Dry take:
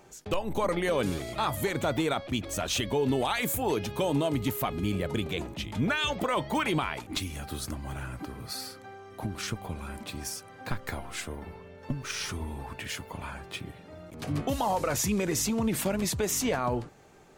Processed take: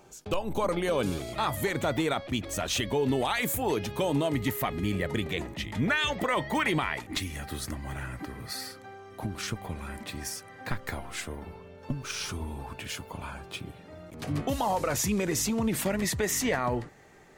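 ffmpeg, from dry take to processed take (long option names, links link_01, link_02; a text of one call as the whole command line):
ffmpeg -i in.wav -af "asetnsamples=nb_out_samples=441:pad=0,asendcmd='1.34 equalizer g 4.5;4.29 equalizer g 12.5;8.72 equalizer g 1.5;9.56 equalizer g 10.5;10.75 equalizer g 2.5;11.42 equalizer g -8.5;13.79 equalizer g 2.5;15.86 equalizer g 13.5',equalizer=frequency=1900:width_type=o:width=0.2:gain=-7.5" out.wav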